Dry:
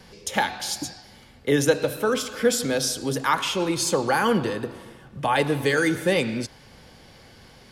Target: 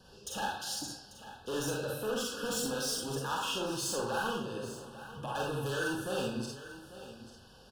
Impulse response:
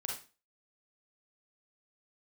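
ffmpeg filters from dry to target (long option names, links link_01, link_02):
-filter_complex "[0:a]asettb=1/sr,asplit=3[link_01][link_02][link_03];[link_01]atrim=end=2.014[link_04];[link_02]atrim=start=2.01:end=3.01,asetpts=PTS-STARTPTS,afade=type=in:duration=0.004:curve=qsin,afade=type=out:start_time=0.996:duration=0.004:curve=qsin,aecho=1:1:4.2:0.68,atrim=end_sample=44100[link_05];[link_03]atrim=start=3.006[link_06];[link_04][link_05]acrossfade=duration=0.004:curve1=hsin:curve2=qsin[link_07];[link_07][link_06]acrossfade=duration=0.004:curve1=qsin:curve2=hsin,asettb=1/sr,asplit=3[link_08][link_09][link_10];[link_08]atrim=end=4.314[link_11];[link_09]atrim=start=4.31:end=5.35,asetpts=PTS-STARTPTS,afade=type=in:duration=0.004:curve=qsin,afade=type=out:start_time=1.036:duration=0.004:curve=qsin,acompressor=threshold=-26dB:ratio=6[link_12];[link_10]atrim=start=5.346[link_13];[link_11][link_12]acrossfade=duration=0.004:curve1=hsin:curve2=qsin[link_14];[link_14][link_13]acrossfade=duration=0.004:curve1=qsin:curve2=hsin,asoftclip=type=hard:threshold=-23.5dB,asuperstop=centerf=2100:order=20:qfactor=2.6,aecho=1:1:843:0.188[link_15];[1:a]atrim=start_sample=2205[link_16];[link_15][link_16]afir=irnorm=-1:irlink=0,volume=-7.5dB"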